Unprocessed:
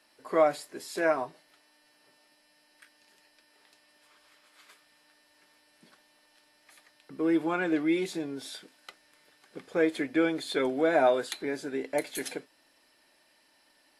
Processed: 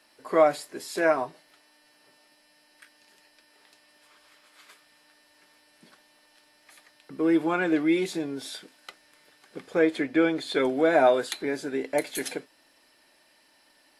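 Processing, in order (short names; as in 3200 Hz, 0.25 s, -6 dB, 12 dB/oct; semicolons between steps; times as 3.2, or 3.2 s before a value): 9.79–10.55 high shelf 8500 Hz -10 dB; gain +3.5 dB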